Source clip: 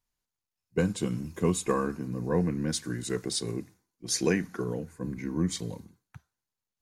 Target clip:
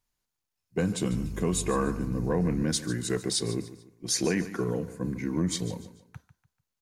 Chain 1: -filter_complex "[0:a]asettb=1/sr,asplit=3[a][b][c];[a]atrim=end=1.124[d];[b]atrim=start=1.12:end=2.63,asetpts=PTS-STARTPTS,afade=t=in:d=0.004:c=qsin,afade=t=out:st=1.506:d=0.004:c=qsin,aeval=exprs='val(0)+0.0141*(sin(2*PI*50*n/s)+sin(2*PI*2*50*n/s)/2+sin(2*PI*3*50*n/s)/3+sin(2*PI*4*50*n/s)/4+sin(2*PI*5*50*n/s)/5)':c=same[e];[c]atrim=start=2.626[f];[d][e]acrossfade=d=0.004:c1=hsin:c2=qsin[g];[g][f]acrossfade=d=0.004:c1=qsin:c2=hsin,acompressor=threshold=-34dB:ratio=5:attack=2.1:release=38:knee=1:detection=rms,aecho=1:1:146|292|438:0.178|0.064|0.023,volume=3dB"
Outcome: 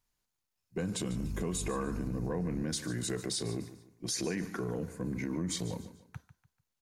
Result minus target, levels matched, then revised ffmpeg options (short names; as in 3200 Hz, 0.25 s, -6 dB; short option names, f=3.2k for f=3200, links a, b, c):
compressor: peak gain reduction +8 dB
-filter_complex "[0:a]asettb=1/sr,asplit=3[a][b][c];[a]atrim=end=1.124[d];[b]atrim=start=1.12:end=2.63,asetpts=PTS-STARTPTS,afade=t=in:d=0.004:c=qsin,afade=t=out:st=1.506:d=0.004:c=qsin,aeval=exprs='val(0)+0.0141*(sin(2*PI*50*n/s)+sin(2*PI*2*50*n/s)/2+sin(2*PI*3*50*n/s)/3+sin(2*PI*4*50*n/s)/4+sin(2*PI*5*50*n/s)/5)':c=same[e];[c]atrim=start=2.626[f];[d][e]acrossfade=d=0.004:c1=hsin:c2=qsin[g];[g][f]acrossfade=d=0.004:c1=qsin:c2=hsin,acompressor=threshold=-24dB:ratio=5:attack=2.1:release=38:knee=1:detection=rms,aecho=1:1:146|292|438:0.178|0.064|0.023,volume=3dB"